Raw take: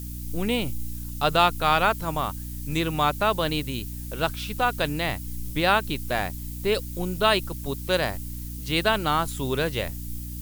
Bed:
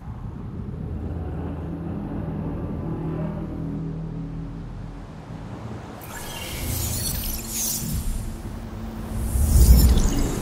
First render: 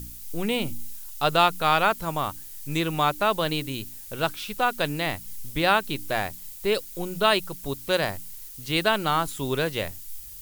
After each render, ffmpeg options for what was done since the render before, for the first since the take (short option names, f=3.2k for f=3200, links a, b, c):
-af "bandreject=f=60:t=h:w=4,bandreject=f=120:t=h:w=4,bandreject=f=180:t=h:w=4,bandreject=f=240:t=h:w=4,bandreject=f=300:t=h:w=4"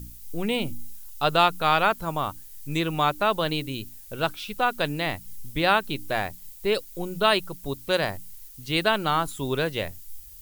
-af "afftdn=nr=6:nf=-42"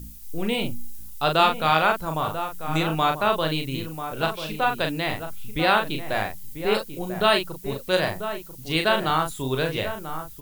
-filter_complex "[0:a]asplit=2[a][b];[b]adelay=38,volume=-5dB[c];[a][c]amix=inputs=2:normalize=0,asplit=2[d][e];[e]adelay=991.3,volume=-9dB,highshelf=f=4k:g=-22.3[f];[d][f]amix=inputs=2:normalize=0"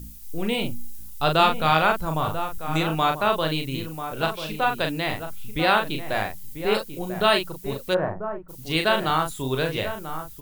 -filter_complex "[0:a]asettb=1/sr,asplit=3[a][b][c];[a]atrim=end=1.204[d];[b]atrim=start=1.2:end=2.58,asetpts=PTS-STARTPTS,afade=t=in:d=0.004:c=qsin,afade=t=out:st=1.376:d=0.004:c=qsin,lowshelf=f=140:g=7.5[e];[c]atrim=start=2.576[f];[d][e]acrossfade=d=0.004:c1=hsin:c2=qsin[g];[g][f]acrossfade=d=0.004:c1=qsin:c2=hsin,asplit=3[h][i][j];[h]afade=t=out:st=7.93:d=0.02[k];[i]lowpass=f=1.4k:w=0.5412,lowpass=f=1.4k:w=1.3066,afade=t=in:st=7.93:d=0.02,afade=t=out:st=8.48:d=0.02[l];[j]afade=t=in:st=8.48:d=0.02[m];[k][l][m]amix=inputs=3:normalize=0"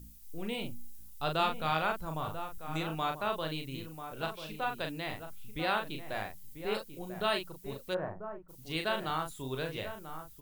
-af "volume=-11.5dB"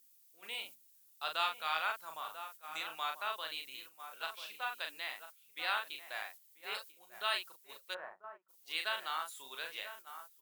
-af "highpass=1.2k,agate=range=-8dB:threshold=-52dB:ratio=16:detection=peak"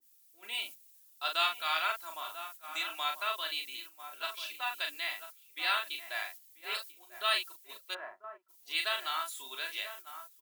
-af "aecho=1:1:3:0.67,adynamicequalizer=threshold=0.00501:dfrequency=1600:dqfactor=0.7:tfrequency=1600:tqfactor=0.7:attack=5:release=100:ratio=0.375:range=2.5:mode=boostabove:tftype=highshelf"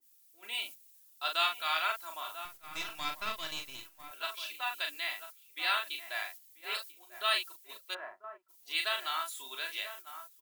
-filter_complex "[0:a]asettb=1/sr,asplit=3[a][b][c];[a]atrim=end=2.454[d];[b]atrim=start=2.45:end=4.11,asetpts=PTS-STARTPTS,afade=t=in:d=0.004:c=qsin,afade=t=out:st=1.656:d=0.004:c=qsin,aeval=exprs='if(lt(val(0),0),0.251*val(0),val(0))':c=same[e];[c]atrim=start=4.106[f];[d][e]acrossfade=d=0.004:c1=hsin:c2=qsin[g];[g][f]acrossfade=d=0.004:c1=qsin:c2=hsin"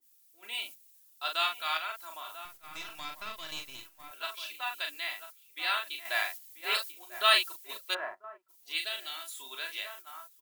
-filter_complex "[0:a]asettb=1/sr,asplit=3[a][b][c];[a]atrim=end=1.774[d];[b]atrim=start=1.77:end=3.49,asetpts=PTS-STARTPTS,afade=t=in:d=0.004:c=qsin,afade=t=out:st=1.716:d=0.004:c=qsin,acompressor=threshold=-41dB:ratio=1.5:attack=3.2:release=140:knee=1:detection=peak[e];[c]atrim=start=3.486[f];[d][e]acrossfade=d=0.004:c1=hsin:c2=qsin[g];[g][f]acrossfade=d=0.004:c1=qsin:c2=hsin,asettb=1/sr,asplit=3[h][i][j];[h]atrim=end=6.054[k];[i]atrim=start=6.05:end=8.15,asetpts=PTS-STARTPTS,afade=t=in:d=0.004:c=qsin,afade=t=out:st=2.096:d=0.004:c=qsin,acontrast=75[l];[j]atrim=start=8.146[m];[k][l]acrossfade=d=0.004:c1=hsin:c2=qsin[n];[n][m]acrossfade=d=0.004:c1=qsin:c2=hsin,asettb=1/sr,asplit=3[o][p][q];[o]atrim=end=8.784[r];[p]atrim=start=8.78:end=9.29,asetpts=PTS-STARTPTS,afade=t=in:d=0.004:c=qsin,afade=t=out:st=0.506:d=0.004:c=qsin,equalizer=f=1.1k:t=o:w=1.1:g=-15[s];[q]atrim=start=9.286[t];[r][s]acrossfade=d=0.004:c1=hsin:c2=qsin[u];[u][t]acrossfade=d=0.004:c1=qsin:c2=hsin"